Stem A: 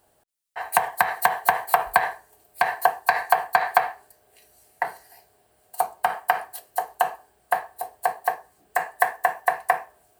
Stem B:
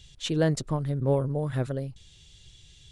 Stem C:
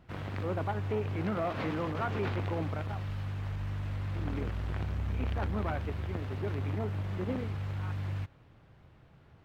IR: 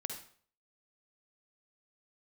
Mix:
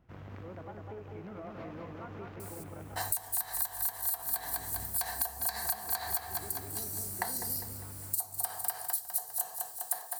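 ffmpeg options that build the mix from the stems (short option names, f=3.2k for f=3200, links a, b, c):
-filter_complex "[0:a]aexciter=amount=9.1:drive=7.5:freq=3.8k,adelay=2400,volume=-4.5dB,asplit=2[a][b];[b]volume=-16dB[c];[2:a]highshelf=f=2.4k:g=-9,acompressor=threshold=-34dB:ratio=6,aexciter=amount=1.5:drive=6.4:freq=5.4k,volume=-7.5dB,asplit=2[d][e];[e]volume=-3.5dB[f];[a][d]amix=inputs=2:normalize=0,acompressor=threshold=-19dB:ratio=6,volume=0dB[g];[c][f]amix=inputs=2:normalize=0,aecho=0:1:201|402|603|804|1005|1206|1407:1|0.49|0.24|0.118|0.0576|0.0282|0.0138[h];[g][h]amix=inputs=2:normalize=0,acompressor=threshold=-30dB:ratio=6"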